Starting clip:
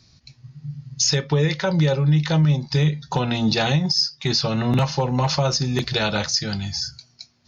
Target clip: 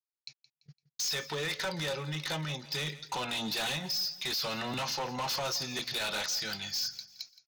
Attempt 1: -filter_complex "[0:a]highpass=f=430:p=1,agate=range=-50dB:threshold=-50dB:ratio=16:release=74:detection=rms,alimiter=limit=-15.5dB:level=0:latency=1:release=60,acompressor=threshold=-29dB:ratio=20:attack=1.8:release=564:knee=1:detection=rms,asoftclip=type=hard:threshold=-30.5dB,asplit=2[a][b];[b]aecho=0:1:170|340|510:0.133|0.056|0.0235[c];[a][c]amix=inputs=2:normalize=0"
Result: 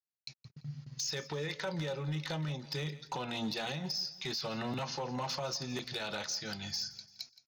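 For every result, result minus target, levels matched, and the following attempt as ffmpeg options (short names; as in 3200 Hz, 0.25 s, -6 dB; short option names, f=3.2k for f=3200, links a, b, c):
compressor: peak gain reduction +12 dB; 500 Hz band +3.0 dB
-filter_complex "[0:a]highpass=f=430:p=1,agate=range=-50dB:threshold=-50dB:ratio=16:release=74:detection=rms,alimiter=limit=-15.5dB:level=0:latency=1:release=60,asoftclip=type=hard:threshold=-30.5dB,asplit=2[a][b];[b]aecho=0:1:170|340|510:0.133|0.056|0.0235[c];[a][c]amix=inputs=2:normalize=0"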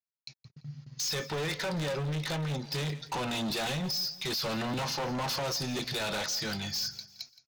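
500 Hz band +2.5 dB
-filter_complex "[0:a]highpass=f=1.6k:p=1,agate=range=-50dB:threshold=-50dB:ratio=16:release=74:detection=rms,alimiter=limit=-15.5dB:level=0:latency=1:release=60,asoftclip=type=hard:threshold=-30.5dB,asplit=2[a][b];[b]aecho=0:1:170|340|510:0.133|0.056|0.0235[c];[a][c]amix=inputs=2:normalize=0"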